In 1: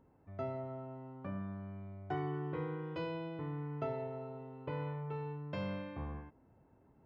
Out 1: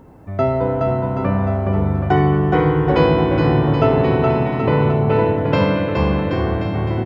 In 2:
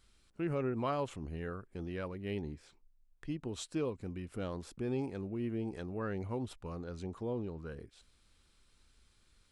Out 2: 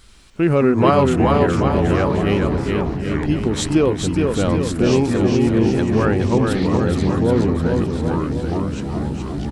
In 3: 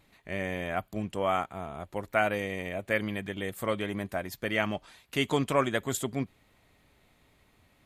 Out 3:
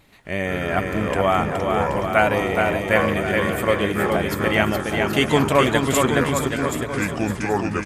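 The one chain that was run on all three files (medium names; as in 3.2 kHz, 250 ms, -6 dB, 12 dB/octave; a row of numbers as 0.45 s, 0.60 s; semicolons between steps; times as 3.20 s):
ever faster or slower copies 86 ms, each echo -5 st, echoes 2, each echo -6 dB; bouncing-ball echo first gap 420 ms, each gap 0.85×, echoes 5; peak normalisation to -2 dBFS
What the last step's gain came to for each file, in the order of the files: +22.0 dB, +19.0 dB, +8.5 dB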